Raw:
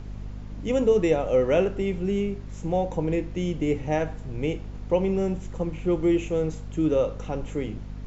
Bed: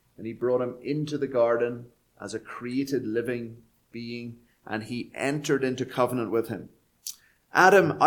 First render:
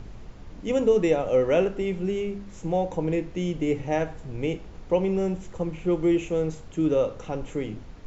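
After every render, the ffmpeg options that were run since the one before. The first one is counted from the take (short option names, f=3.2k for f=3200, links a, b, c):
-af "bandreject=f=50:t=h:w=4,bandreject=f=100:t=h:w=4,bandreject=f=150:t=h:w=4,bandreject=f=200:t=h:w=4,bandreject=f=250:t=h:w=4"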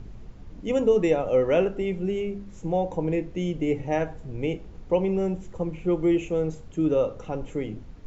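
-af "afftdn=nr=6:nf=-44"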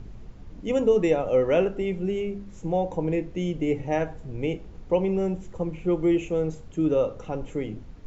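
-af anull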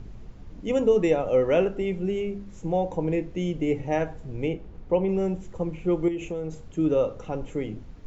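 -filter_complex "[0:a]asettb=1/sr,asplit=3[a][b][c];[a]atrim=end=4.484[d];[b]atrim=start=4.48:end=5.09,asetpts=PTS-STARTPTS,afade=t=in:d=0.004:c=qsin,afade=t=out:st=0.606:d=0.004:c=qsin,lowpass=f=2.5k:p=1[e];[c]atrim=start=5.086[f];[d][e]acrossfade=d=0.004:c1=hsin:c2=qsin[g];[g][f]acrossfade=d=0.004:c1=qsin:c2=hsin,asettb=1/sr,asplit=3[h][i][j];[h]atrim=end=6.084[k];[i]atrim=start=6.08:end=6.69,asetpts=PTS-STARTPTS,afade=t=in:d=0.004:c=qsin,afade=t=out:st=0.606:d=0.004:c=qsin,acompressor=threshold=-27dB:ratio=6:attack=3.2:release=140:knee=1:detection=peak[l];[j]atrim=start=6.686[m];[k][l]acrossfade=d=0.004:c1=hsin:c2=qsin[n];[n][m]acrossfade=d=0.004:c1=qsin:c2=hsin"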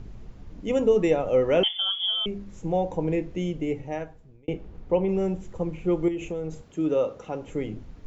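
-filter_complex "[0:a]asettb=1/sr,asplit=3[a][b][c];[a]atrim=end=1.634[d];[b]atrim=start=1.63:end=2.26,asetpts=PTS-STARTPTS,afade=t=in:d=0.004:c=qsin,afade=t=out:st=0.626:d=0.004:c=qsin,lowpass=f=3k:t=q:w=0.5098,lowpass=f=3k:t=q:w=0.6013,lowpass=f=3k:t=q:w=0.9,lowpass=f=3k:t=q:w=2.563,afreqshift=-3500[e];[c]atrim=start=2.256[f];[d][e]acrossfade=d=0.004:c1=hsin:c2=qsin[g];[g][f]acrossfade=d=0.004:c1=qsin:c2=hsin,asettb=1/sr,asplit=3[h][i][j];[h]atrim=end=6.634[k];[i]atrim=start=6.63:end=7.48,asetpts=PTS-STARTPTS,afade=t=in:d=0.004:c=qsin,afade=t=out:st=0.846:d=0.004:c=qsin,highpass=f=230:p=1[l];[j]atrim=start=7.476[m];[k][l]acrossfade=d=0.004:c1=hsin:c2=qsin[n];[n][m]acrossfade=d=0.004:c1=qsin:c2=hsin,asplit=2[o][p];[o]atrim=end=4.48,asetpts=PTS-STARTPTS,afade=t=out:st=3.35:d=1.13[q];[p]atrim=start=4.48,asetpts=PTS-STARTPTS,afade=t=in:d=0.004:c=hsin[r];[q][r]concat=n=2:v=0:a=1"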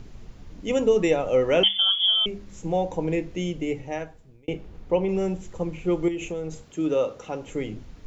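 -af "highshelf=f=2.1k:g=8,bandreject=f=50:t=h:w=6,bandreject=f=100:t=h:w=6,bandreject=f=150:t=h:w=6,bandreject=f=200:t=h:w=6"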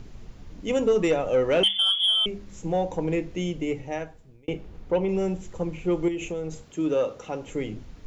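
-af "asoftclip=type=tanh:threshold=-13dB"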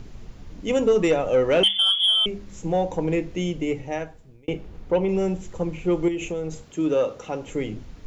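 -af "volume=2.5dB"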